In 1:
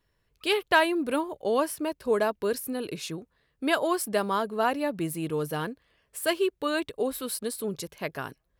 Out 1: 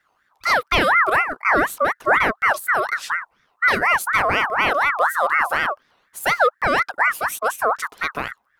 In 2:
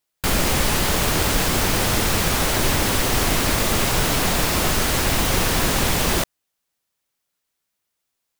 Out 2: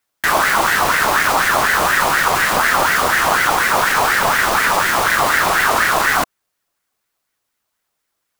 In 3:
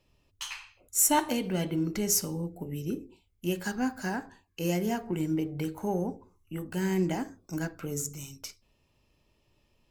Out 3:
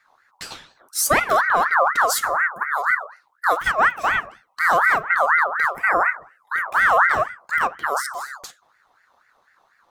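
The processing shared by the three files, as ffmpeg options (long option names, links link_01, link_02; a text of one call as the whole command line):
ffmpeg -i in.wav -filter_complex "[0:a]equalizer=frequency=210:width=0.54:gain=11.5,asplit=2[link_01][link_02];[link_02]alimiter=limit=-14dB:level=0:latency=1:release=35,volume=1.5dB[link_03];[link_01][link_03]amix=inputs=2:normalize=0,aeval=exprs='val(0)*sin(2*PI*1300*n/s+1300*0.35/4.1*sin(2*PI*4.1*n/s))':channel_layout=same,volume=-1dB" out.wav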